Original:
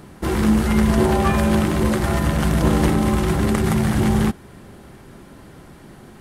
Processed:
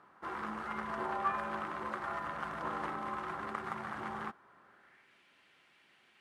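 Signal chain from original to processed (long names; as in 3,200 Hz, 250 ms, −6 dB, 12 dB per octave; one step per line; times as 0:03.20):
band-pass filter sweep 1,200 Hz → 2,600 Hz, 0:04.60–0:05.17
level −7 dB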